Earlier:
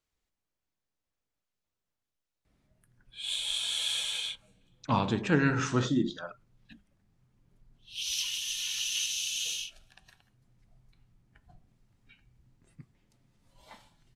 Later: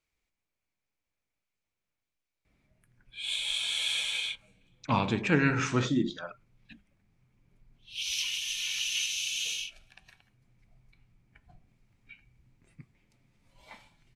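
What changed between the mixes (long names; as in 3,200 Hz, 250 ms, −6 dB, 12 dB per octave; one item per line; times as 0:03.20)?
background: add high-shelf EQ 8,600 Hz −4.5 dB
master: add parametric band 2,300 Hz +10.5 dB 0.32 octaves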